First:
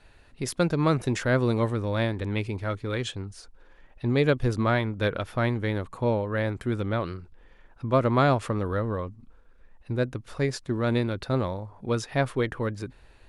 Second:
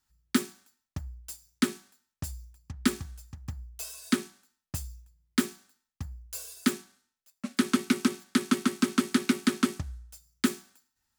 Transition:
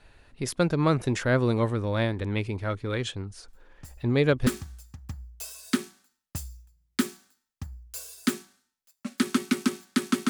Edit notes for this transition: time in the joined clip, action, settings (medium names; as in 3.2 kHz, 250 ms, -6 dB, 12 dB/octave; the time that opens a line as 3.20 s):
first
3.48 s: add second from 1.87 s 0.99 s -10 dB
4.47 s: go over to second from 2.86 s